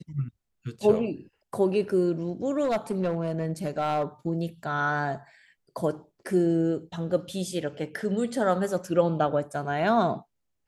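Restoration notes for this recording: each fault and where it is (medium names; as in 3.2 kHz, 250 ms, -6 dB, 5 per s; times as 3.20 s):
2.63–4.04 s: clipped -21 dBFS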